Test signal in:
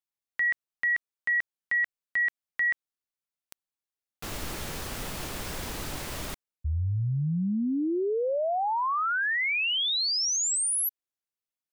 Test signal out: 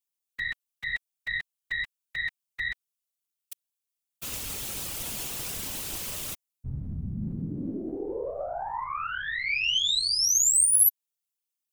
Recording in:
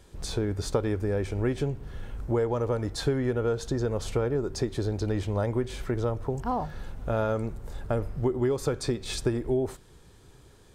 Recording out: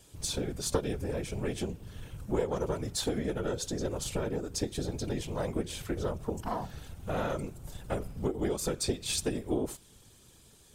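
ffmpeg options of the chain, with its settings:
-af "aeval=exprs='0.237*(cos(1*acos(clip(val(0)/0.237,-1,1)))-cos(1*PI/2))+0.0841*(cos(2*acos(clip(val(0)/0.237,-1,1)))-cos(2*PI/2))':c=same,aexciter=amount=3.5:drive=1.4:freq=2.5k,afftfilt=real='hypot(re,im)*cos(2*PI*random(0))':imag='hypot(re,im)*sin(2*PI*random(1))':win_size=512:overlap=0.75"

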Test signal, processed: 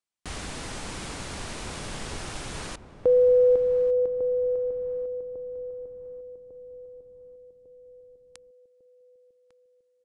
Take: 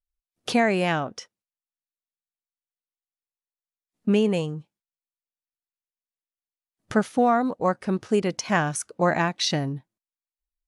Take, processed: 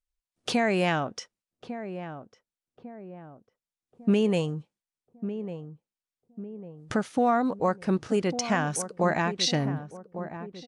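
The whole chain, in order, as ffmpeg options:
-filter_complex "[0:a]alimiter=limit=-14.5dB:level=0:latency=1:release=240,aresample=22050,aresample=44100,asplit=2[a][b];[b]adelay=1150,lowpass=f=880:p=1,volume=-10dB,asplit=2[c][d];[d]adelay=1150,lowpass=f=880:p=1,volume=0.5,asplit=2[e][f];[f]adelay=1150,lowpass=f=880:p=1,volume=0.5,asplit=2[g][h];[h]adelay=1150,lowpass=f=880:p=1,volume=0.5,asplit=2[i][j];[j]adelay=1150,lowpass=f=880:p=1,volume=0.5[k];[c][e][g][i][k]amix=inputs=5:normalize=0[l];[a][l]amix=inputs=2:normalize=0"

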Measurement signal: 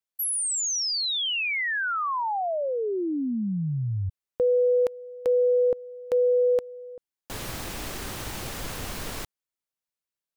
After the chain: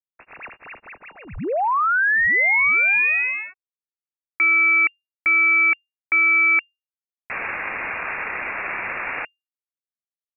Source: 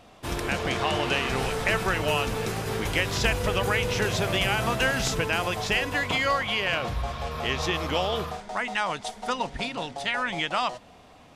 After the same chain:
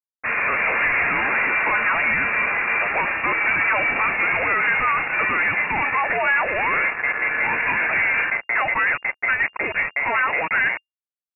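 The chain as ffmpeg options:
-filter_complex "[0:a]highpass=400,aeval=exprs='sgn(val(0))*max(abs(val(0))-0.0126,0)':c=same,asplit=2[a][b];[b]highpass=f=720:p=1,volume=37dB,asoftclip=type=tanh:threshold=-10.5dB[c];[a][c]amix=inputs=2:normalize=0,lowpass=f=1.8k:p=1,volume=-6dB,lowpass=f=2.4k:t=q:w=0.5098,lowpass=f=2.4k:t=q:w=0.6013,lowpass=f=2.4k:t=q:w=0.9,lowpass=f=2.4k:t=q:w=2.563,afreqshift=-2800"

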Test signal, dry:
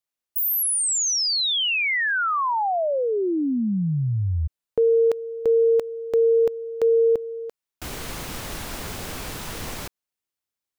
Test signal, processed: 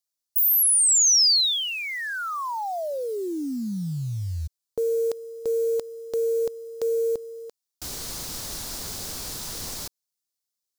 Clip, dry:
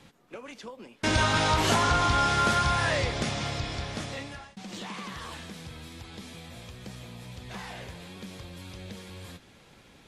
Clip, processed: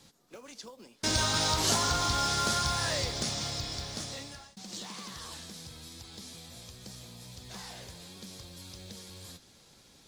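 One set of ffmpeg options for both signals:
-af "acrusher=bits=8:mode=log:mix=0:aa=0.000001,highshelf=f=3.5k:t=q:w=1.5:g=9,volume=-6dB"

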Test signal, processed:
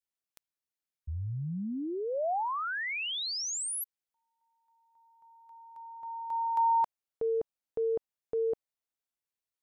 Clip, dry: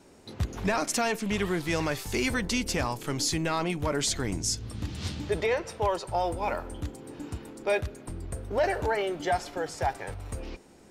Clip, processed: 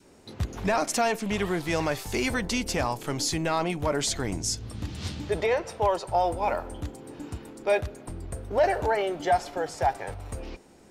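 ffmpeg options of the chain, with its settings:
-af "adynamicequalizer=threshold=0.00794:dfrequency=710:dqfactor=1.5:tfrequency=710:tqfactor=1.5:attack=5:release=100:ratio=0.375:range=2.5:mode=boostabove:tftype=bell"

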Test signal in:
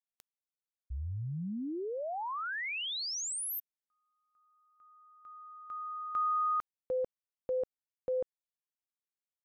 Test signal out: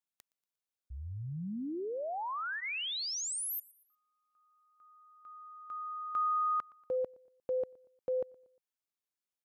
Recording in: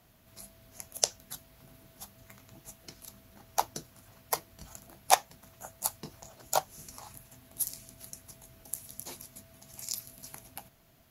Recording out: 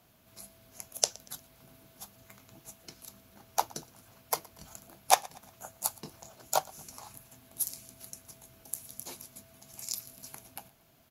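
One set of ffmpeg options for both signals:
-af "lowshelf=f=73:g=-10,bandreject=f=1.9k:w=15,aecho=1:1:118|236|354:0.0668|0.0287|0.0124"

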